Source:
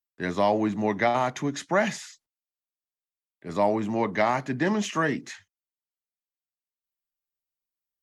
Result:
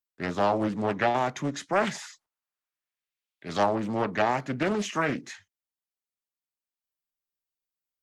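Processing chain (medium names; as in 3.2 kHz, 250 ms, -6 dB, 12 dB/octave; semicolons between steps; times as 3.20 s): 1.94–3.64 s: peaking EQ 750 Hz -> 4.1 kHz +11.5 dB 1.9 oct; loudspeaker Doppler distortion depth 0.49 ms; trim -1.5 dB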